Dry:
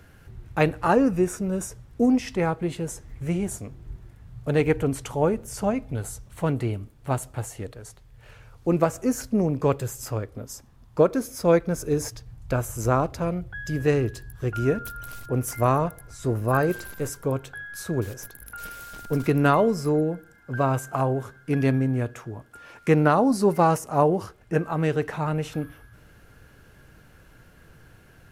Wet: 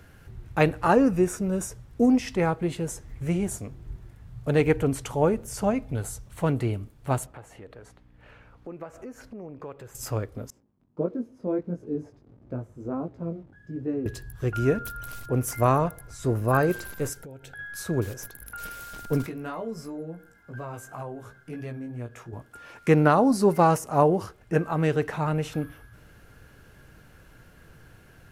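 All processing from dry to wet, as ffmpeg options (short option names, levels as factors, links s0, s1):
-filter_complex "[0:a]asettb=1/sr,asplit=3[s0][s1][s2];[s0]atrim=end=7.264[s3];[s1]atrim=start=7.26:end=9.95,asetpts=PTS-STARTPTS,afade=t=in:d=0.004:c=qsin,afade=t=out:st=2.686:d=0.004:c=qsin,aeval=exprs='val(0)+0.00316*(sin(2*PI*60*n/s)+sin(2*PI*2*60*n/s)/2+sin(2*PI*3*60*n/s)/3+sin(2*PI*4*60*n/s)/4+sin(2*PI*5*60*n/s)/5)':c=same,acompressor=threshold=0.0158:ratio=4:attack=3.2:release=140:knee=1:detection=peak,bass=f=250:g=-8,treble=f=4000:g=-15[s4];[s2]atrim=start=9.946[s5];[s3][s4]acrossfade=d=0.004:c1=hsin:c2=qsin[s6];[s6][s5]acrossfade=d=0.004:c1=qsin:c2=hsin,asettb=1/sr,asplit=3[s7][s8][s9];[s7]atrim=end=10.504[s10];[s8]atrim=start=10.5:end=14.06,asetpts=PTS-STARTPTS,afade=t=in:d=0.004:c=qsin,afade=t=out:st=3.556:d=0.004:c=qsin,acrusher=bits=8:dc=4:mix=0:aa=0.000001,bandpass=f=260:t=q:w=1.3,flanger=delay=16.5:depth=4.4:speed=1.5[s11];[s9]atrim=start=14.056[s12];[s10][s11]acrossfade=d=0.004:c1=hsin:c2=qsin[s13];[s13][s12]acrossfade=d=0.004:c1=qsin:c2=hsin,asettb=1/sr,asplit=3[s14][s15][s16];[s14]atrim=end=17.134[s17];[s15]atrim=start=17.13:end=17.59,asetpts=PTS-STARTPTS,afade=t=in:d=0.004:c=qsin,afade=t=out:st=0.456:d=0.004:c=qsin,asuperstop=centerf=1100:order=8:qfactor=3.3,acompressor=threshold=0.0112:ratio=12:attack=3.2:release=140:knee=1:detection=peak[s18];[s16]atrim=start=17.586[s19];[s17][s18]acrossfade=d=0.004:c1=hsin:c2=qsin[s20];[s20][s19]acrossfade=d=0.004:c1=qsin:c2=hsin,asettb=1/sr,asplit=3[s21][s22][s23];[s21]atrim=end=19.264[s24];[s22]atrim=start=19.26:end=22.33,asetpts=PTS-STARTPTS,afade=t=in:d=0.004:c=qsin,afade=t=out:st=3.066:d=0.004:c=qsin,acompressor=threshold=0.0141:ratio=2:attack=3.2:release=140:knee=1:detection=peak,flanger=delay=16.5:depth=2.1:speed=2.9[s25];[s23]atrim=start=22.326[s26];[s24][s25]acrossfade=d=0.004:c1=hsin:c2=qsin[s27];[s27][s26]acrossfade=d=0.004:c1=qsin:c2=hsin"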